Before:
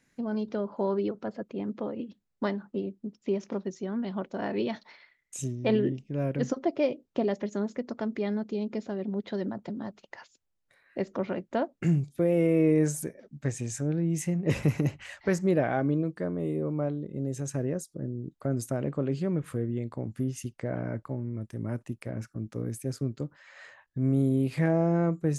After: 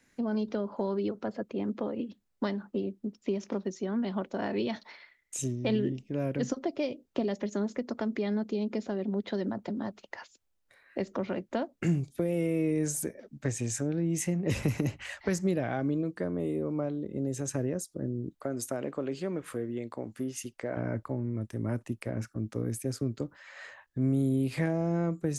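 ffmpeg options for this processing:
ffmpeg -i in.wav -filter_complex "[0:a]asettb=1/sr,asplit=3[link_01][link_02][link_03];[link_01]atrim=end=18.404[link_04];[link_02]atrim=start=18.4:end=20.77,asetpts=PTS-STARTPTS,afade=type=in:duration=0.004:curve=qsin,afade=type=out:start_time=2.366:duration=0.004:curve=qsin,equalizer=frequency=76:width_type=o:width=2.7:gain=-14[link_05];[link_03]atrim=start=20.766[link_06];[link_04][link_05]acrossfade=duration=0.004:curve1=hsin:curve2=qsin[link_07];[link_07][link_06]acrossfade=duration=0.004:curve1=qsin:curve2=hsin,equalizer=frequency=150:width_type=o:width=0.45:gain=-8,acrossover=split=210|3000[link_08][link_09][link_10];[link_09]acompressor=threshold=-33dB:ratio=6[link_11];[link_08][link_11][link_10]amix=inputs=3:normalize=0,volume=3dB" out.wav

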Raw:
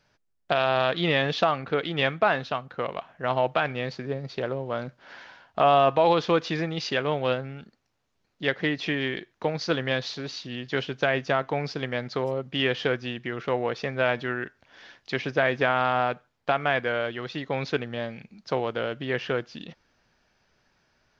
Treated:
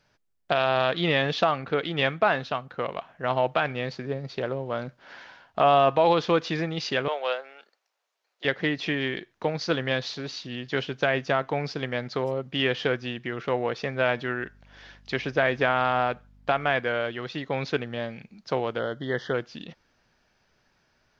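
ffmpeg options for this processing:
ffmpeg -i in.wav -filter_complex "[0:a]asettb=1/sr,asplit=3[link_01][link_02][link_03];[link_01]atrim=end=7.084[link_04];[link_02]atrim=start=7.08:end=8.45,asetpts=PTS-STARTPTS,afade=type=in:duration=0.004:curve=qsin,afade=type=out:start_time=1.366:duration=0.004:curve=qsin,highpass=frequency=510:width=0.5412,highpass=frequency=510:width=1.3066[link_05];[link_03]atrim=start=8.446[link_06];[link_04][link_05]acrossfade=duration=0.004:curve1=hsin:curve2=qsin[link_07];[link_07][link_06]acrossfade=duration=0.004:curve1=qsin:curve2=hsin,asettb=1/sr,asplit=3[link_08][link_09][link_10];[link_08]atrim=end=14.394[link_11];[link_09]atrim=start=14.39:end=16.73,asetpts=PTS-STARTPTS,afade=type=in:duration=0.004:curve=qsin,afade=type=out:start_time=2.336:duration=0.004:curve=qsin,aeval=exprs='val(0)+0.002*(sin(2*PI*50*n/s)+sin(2*PI*2*50*n/s)/2+sin(2*PI*3*50*n/s)/3+sin(2*PI*4*50*n/s)/4+sin(2*PI*5*50*n/s)/5)':channel_layout=same[link_12];[link_10]atrim=start=16.726[link_13];[link_11][link_12]acrossfade=duration=0.004:curve1=hsin:curve2=qsin[link_14];[link_14][link_13]acrossfade=duration=0.004:curve1=qsin:curve2=hsin,asplit=3[link_15][link_16][link_17];[link_15]afade=type=out:start_time=18.78:duration=0.02[link_18];[link_16]asuperstop=centerf=2500:order=8:qfactor=2.2,afade=type=in:start_time=18.78:duration=0.02,afade=type=out:start_time=19.33:duration=0.02[link_19];[link_17]afade=type=in:start_time=19.33:duration=0.02[link_20];[link_18][link_19][link_20]amix=inputs=3:normalize=0" out.wav

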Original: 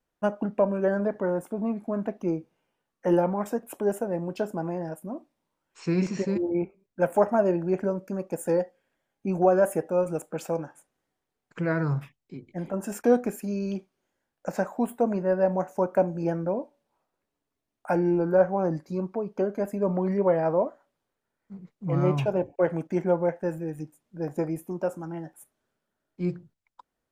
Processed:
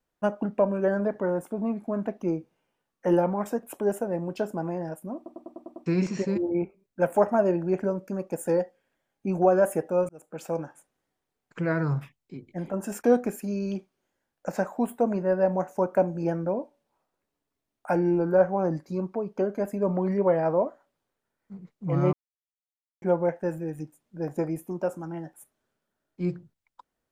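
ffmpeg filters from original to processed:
ffmpeg -i in.wav -filter_complex "[0:a]asplit=11[link_01][link_02][link_03][link_04][link_05][link_06][link_07][link_08][link_09][link_10][link_11];[link_01]atrim=end=5.262[link_12];[link_02]atrim=start=5.158:end=5.262[link_13];[link_03]atrim=start=5.158:end=5.262[link_14];[link_04]atrim=start=5.158:end=5.262[link_15];[link_05]atrim=start=5.158:end=5.262[link_16];[link_06]atrim=start=5.158:end=5.262[link_17];[link_07]atrim=start=5.158:end=5.262[link_18];[link_08]atrim=start=5.858:end=10.09,asetpts=PTS-STARTPTS,afade=type=out:start_time=4.228:duration=0.004:curve=hsin[link_19];[link_09]atrim=start=10.09:end=22.13,asetpts=PTS-STARTPTS,afade=type=in:duration=0.5,afade=type=out:start_time=12.036:duration=0.004:curve=hsin[link_20];[link_10]atrim=start=22.13:end=23.02,asetpts=PTS-STARTPTS,volume=0[link_21];[link_11]atrim=start=23.02,asetpts=PTS-STARTPTS,afade=type=in:duration=0.004:curve=hsin[link_22];[link_12][link_13]acrossfade=duration=0.004:curve1=hsin:curve2=hsin[link_23];[link_23][link_14]acrossfade=duration=0.004:curve1=hsin:curve2=hsin[link_24];[link_24][link_15]acrossfade=duration=0.004:curve1=hsin:curve2=hsin[link_25];[link_25][link_16]acrossfade=duration=0.004:curve1=hsin:curve2=hsin[link_26];[link_26][link_17]acrossfade=duration=0.004:curve1=hsin:curve2=hsin[link_27];[link_27][link_18]acrossfade=duration=0.004:curve1=hsin:curve2=hsin[link_28];[link_19][link_20][link_21][link_22]concat=n=4:v=0:a=1[link_29];[link_28][link_29]acrossfade=duration=0.004:curve1=hsin:curve2=hsin" out.wav

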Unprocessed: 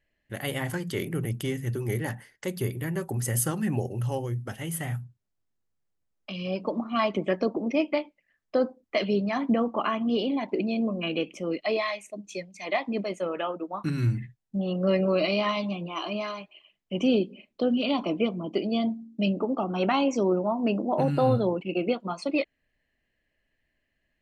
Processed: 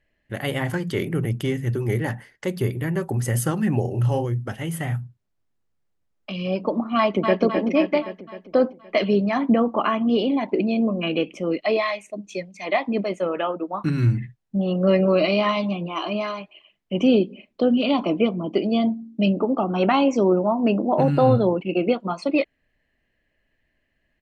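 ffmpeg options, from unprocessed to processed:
ffmpeg -i in.wav -filter_complex "[0:a]asettb=1/sr,asplit=3[link_01][link_02][link_03];[link_01]atrim=end=3.814[link_04];[link_02]atrim=start=3.81:end=4.25,asetpts=PTS-STARTPTS,afade=type=in:duration=0.004:curve=qsin,afade=type=out:start_time=0.436:duration=0.004:curve=qsin,asplit=2[link_05][link_06];[link_06]adelay=34,volume=-6dB[link_07];[link_05][link_07]amix=inputs=2:normalize=0,atrim=end_sample=19404[link_08];[link_03]atrim=start=4.246[link_09];[link_04][link_08]acrossfade=duration=0.004:curve1=hsin:curve2=qsin[link_10];[link_10][link_09]acrossfade=duration=0.004:curve1=qsin:curve2=hsin,asplit=2[link_11][link_12];[link_12]afade=type=in:start_time=6.97:duration=0.01,afade=type=out:start_time=7.42:duration=0.01,aecho=0:1:260|520|780|1040|1300|1560|1820|2080:0.530884|0.318531|0.191118|0.114671|0.0688026|0.0412816|0.0247689|0.0148614[link_13];[link_11][link_13]amix=inputs=2:normalize=0,aemphasis=mode=reproduction:type=cd,volume=5.5dB" out.wav

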